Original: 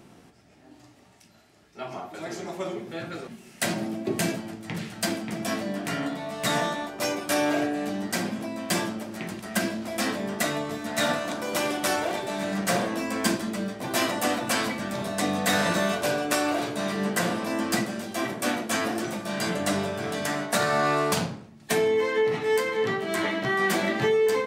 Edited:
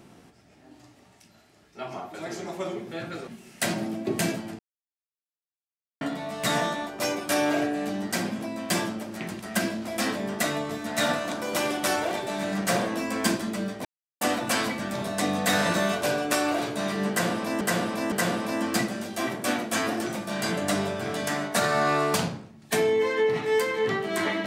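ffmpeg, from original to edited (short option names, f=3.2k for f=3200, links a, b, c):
-filter_complex "[0:a]asplit=7[a][b][c][d][e][f][g];[a]atrim=end=4.59,asetpts=PTS-STARTPTS,afade=t=out:st=4.586:d=0.004:c=hsin[h];[b]atrim=start=4.59:end=6.01,asetpts=PTS-STARTPTS,volume=0[i];[c]atrim=start=6.01:end=13.85,asetpts=PTS-STARTPTS,afade=t=in:d=0.004:c=hsin,afade=t=out:st=7.836:d=0.004:c=hsin[j];[d]atrim=start=13.85:end=14.21,asetpts=PTS-STARTPTS,volume=0[k];[e]atrim=start=14.21:end=17.612,asetpts=PTS-STARTPTS,afade=t=in:d=0.004:c=hsin[l];[f]atrim=start=17.098:end=17.612[m];[g]atrim=start=17.098[n];[h][i][j][k][l]concat=n=5:v=0:a=1[o];[o][m]acrossfade=d=0.004:c1=hsin:c2=hsin[p];[p][n]acrossfade=d=0.004:c1=hsin:c2=hsin"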